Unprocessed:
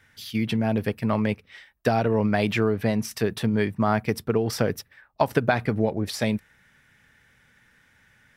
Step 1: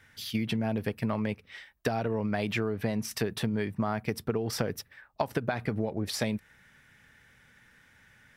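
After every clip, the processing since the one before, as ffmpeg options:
-af "acompressor=threshold=-26dB:ratio=6"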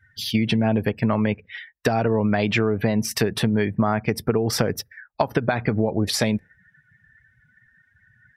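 -filter_complex "[0:a]afftdn=nr=28:nf=-50,asplit=2[a][b];[b]alimiter=limit=-21.5dB:level=0:latency=1:release=240,volume=-2.5dB[c];[a][c]amix=inputs=2:normalize=0,volume=5.5dB"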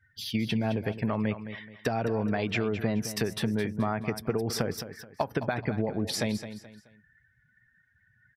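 -af "aecho=1:1:214|428|642:0.266|0.0878|0.029,volume=-8dB"

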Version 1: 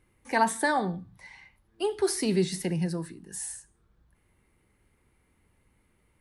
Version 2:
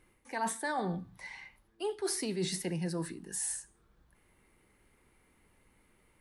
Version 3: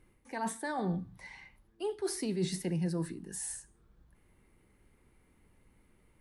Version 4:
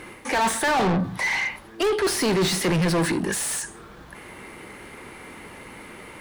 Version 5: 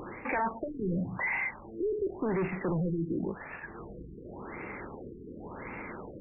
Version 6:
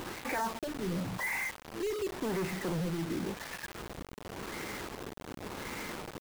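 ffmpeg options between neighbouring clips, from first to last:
-af "equalizer=f=82:w=0.59:g=-7.5,areverse,acompressor=threshold=-34dB:ratio=8,areverse,volume=3dB"
-af "lowshelf=f=390:g=8.5,volume=-4dB"
-filter_complex "[0:a]asplit=2[a][b];[b]highpass=f=720:p=1,volume=33dB,asoftclip=type=tanh:threshold=-21.5dB[c];[a][c]amix=inputs=2:normalize=0,lowpass=f=3.9k:p=1,volume=-6dB,volume=7dB"
-af "acompressor=threshold=-39dB:ratio=2,afftfilt=real='re*lt(b*sr/1024,450*pow(2800/450,0.5+0.5*sin(2*PI*0.91*pts/sr)))':imag='im*lt(b*sr/1024,450*pow(2800/450,0.5+0.5*sin(2*PI*0.91*pts/sr)))':win_size=1024:overlap=0.75,volume=2dB"
-af "aeval=exprs='val(0)+0.5*0.0141*sgn(val(0))':c=same,acrusher=bits=5:mix=0:aa=0.000001,volume=-5dB"

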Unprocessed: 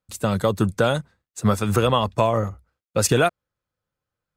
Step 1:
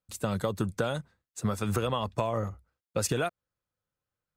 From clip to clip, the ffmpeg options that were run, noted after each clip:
-af "acompressor=threshold=-19dB:ratio=6,volume=-5.5dB"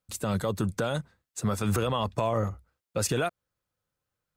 -af "alimiter=limit=-21.5dB:level=0:latency=1:release=27,volume=4dB"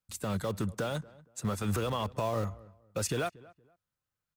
-filter_complex "[0:a]acrossover=split=390|580|2800[a][b][c][d];[b]acrusher=bits=6:mix=0:aa=0.000001[e];[a][e][c][d]amix=inputs=4:normalize=0,asplit=2[f][g];[g]adelay=234,lowpass=f=1.6k:p=1,volume=-21dB,asplit=2[h][i];[i]adelay=234,lowpass=f=1.6k:p=1,volume=0.27[j];[f][h][j]amix=inputs=3:normalize=0,volume=-4.5dB"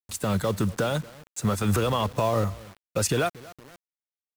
-af "areverse,acompressor=mode=upward:threshold=-49dB:ratio=2.5,areverse,acrusher=bits=8:mix=0:aa=0.000001,volume=7.5dB"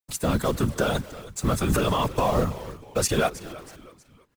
-filter_complex "[0:a]asplit=4[a][b][c][d];[b]adelay=320,afreqshift=-79,volume=-17dB[e];[c]adelay=640,afreqshift=-158,volume=-25dB[f];[d]adelay=960,afreqshift=-237,volume=-32.9dB[g];[a][e][f][g]amix=inputs=4:normalize=0,afftfilt=real='hypot(re,im)*cos(2*PI*random(0))':imag='hypot(re,im)*sin(2*PI*random(1))':win_size=512:overlap=0.75,volume=7.5dB"

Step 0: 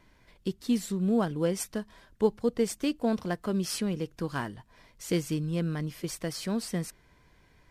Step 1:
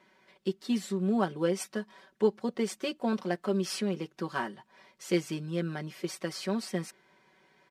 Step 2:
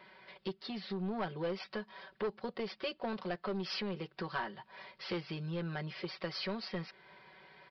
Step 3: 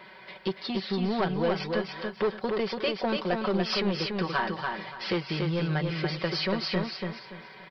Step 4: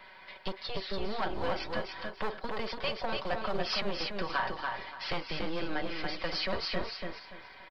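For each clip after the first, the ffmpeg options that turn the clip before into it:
-af "highpass=270,highshelf=f=7.5k:g=-12,aecho=1:1:5.3:0.77"
-af "aresample=11025,asoftclip=type=tanh:threshold=-24.5dB,aresample=44100,acompressor=threshold=-46dB:ratio=2,equalizer=f=270:t=o:w=0.54:g=-14,volume=7dB"
-af "aecho=1:1:287|574|861|1148:0.631|0.17|0.046|0.0124,volume=9dB"
-filter_complex "[0:a]acrossover=split=500|1200[a][b][c];[a]aeval=exprs='abs(val(0))':c=same[d];[b]asplit=2[e][f];[f]adelay=47,volume=-6dB[g];[e][g]amix=inputs=2:normalize=0[h];[d][h][c]amix=inputs=3:normalize=0,volume=-3dB"

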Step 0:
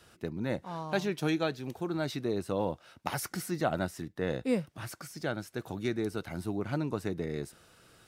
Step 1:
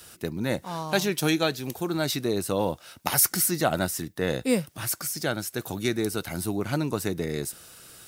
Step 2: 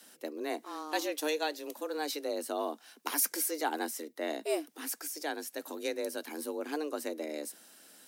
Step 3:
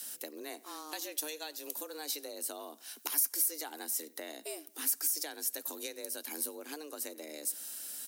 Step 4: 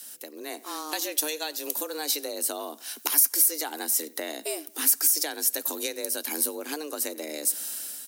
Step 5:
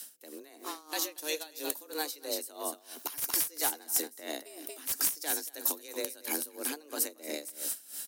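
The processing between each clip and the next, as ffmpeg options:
-af "aemphasis=mode=production:type=75kf,volume=5dB"
-af "afreqshift=150,volume=-8.5dB"
-filter_complex "[0:a]acompressor=threshold=-43dB:ratio=6,crystalizer=i=4:c=0,asplit=2[a][b];[b]adelay=91,lowpass=f=3.5k:p=1,volume=-21dB,asplit=2[c][d];[d]adelay=91,lowpass=f=3.5k:p=1,volume=0.4,asplit=2[e][f];[f]adelay=91,lowpass=f=3.5k:p=1,volume=0.4[g];[a][c][e][g]amix=inputs=4:normalize=0"
-af "dynaudnorm=f=190:g=5:m=10dB"
-filter_complex "[0:a]aeval=exprs='(mod(3.35*val(0)+1,2)-1)/3.35':c=same,asplit=2[a][b];[b]aecho=0:1:231:0.335[c];[a][c]amix=inputs=2:normalize=0,aeval=exprs='val(0)*pow(10,-20*(0.5-0.5*cos(2*PI*3*n/s))/20)':c=same"

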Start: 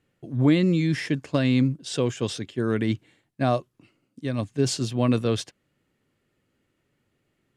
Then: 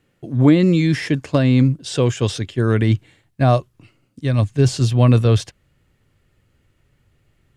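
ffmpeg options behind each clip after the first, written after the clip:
-filter_complex "[0:a]asubboost=boost=6.5:cutoff=96,acrossover=split=1200[a][b];[b]alimiter=level_in=3.5dB:limit=-24dB:level=0:latency=1:release=12,volume=-3.5dB[c];[a][c]amix=inputs=2:normalize=0,volume=7.5dB"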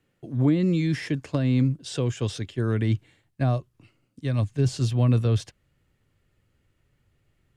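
-filter_complex "[0:a]acrossover=split=320[a][b];[b]acompressor=threshold=-24dB:ratio=2.5[c];[a][c]amix=inputs=2:normalize=0,volume=-7dB"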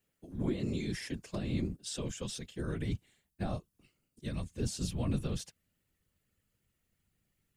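-af "afftfilt=real='hypot(re,im)*cos(2*PI*random(0))':imag='hypot(re,im)*sin(2*PI*random(1))':win_size=512:overlap=0.75,aemphasis=mode=production:type=75kf,volume=-6.5dB"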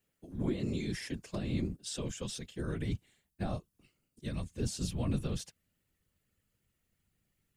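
-af anull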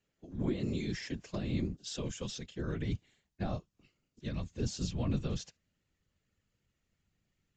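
-ar 16000 -c:a aac -b:a 64k

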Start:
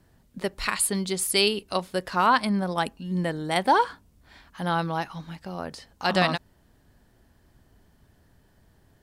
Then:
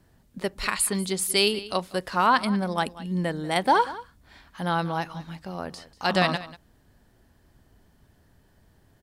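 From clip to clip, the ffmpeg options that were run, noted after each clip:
-af "aecho=1:1:190:0.133"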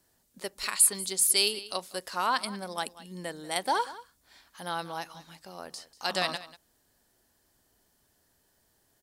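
-af "bass=f=250:g=-11,treble=f=4k:g=12,volume=-7.5dB"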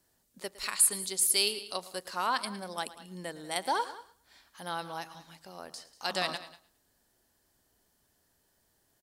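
-af "aecho=1:1:110|220|330:0.141|0.041|0.0119,volume=-2.5dB"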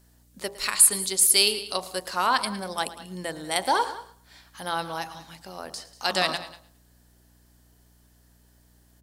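-af "bandreject=f=57.38:t=h:w=4,bandreject=f=114.76:t=h:w=4,bandreject=f=172.14:t=h:w=4,bandreject=f=229.52:t=h:w=4,bandreject=f=286.9:t=h:w=4,bandreject=f=344.28:t=h:w=4,bandreject=f=401.66:t=h:w=4,bandreject=f=459.04:t=h:w=4,bandreject=f=516.42:t=h:w=4,bandreject=f=573.8:t=h:w=4,bandreject=f=631.18:t=h:w=4,bandreject=f=688.56:t=h:w=4,bandreject=f=745.94:t=h:w=4,bandreject=f=803.32:t=h:w=4,bandreject=f=860.7:t=h:w=4,bandreject=f=918.08:t=h:w=4,bandreject=f=975.46:t=h:w=4,bandreject=f=1.03284k:t=h:w=4,bandreject=f=1.09022k:t=h:w=4,bandreject=f=1.1476k:t=h:w=4,aeval=exprs='val(0)+0.000501*(sin(2*PI*60*n/s)+sin(2*PI*2*60*n/s)/2+sin(2*PI*3*60*n/s)/3+sin(2*PI*4*60*n/s)/4+sin(2*PI*5*60*n/s)/5)':c=same,volume=7.5dB"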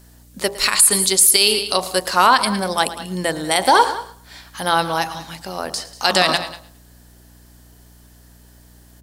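-af "alimiter=level_in=12.5dB:limit=-1dB:release=50:level=0:latency=1,volume=-1dB"

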